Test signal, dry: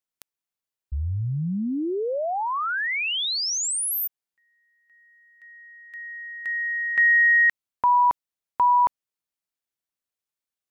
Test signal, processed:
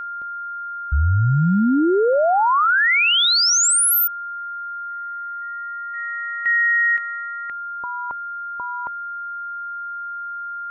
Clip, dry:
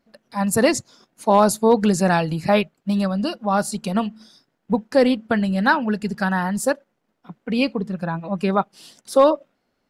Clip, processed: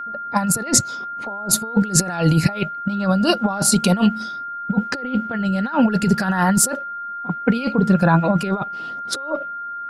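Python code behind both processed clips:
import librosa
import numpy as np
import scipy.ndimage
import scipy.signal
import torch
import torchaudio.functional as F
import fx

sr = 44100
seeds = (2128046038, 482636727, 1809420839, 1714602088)

y = fx.over_compress(x, sr, threshold_db=-25.0, ratio=-0.5)
y = fx.env_lowpass(y, sr, base_hz=690.0, full_db=-22.5)
y = y + 10.0 ** (-34.0 / 20.0) * np.sin(2.0 * np.pi * 1400.0 * np.arange(len(y)) / sr)
y = F.gain(torch.from_numpy(y), 7.0).numpy()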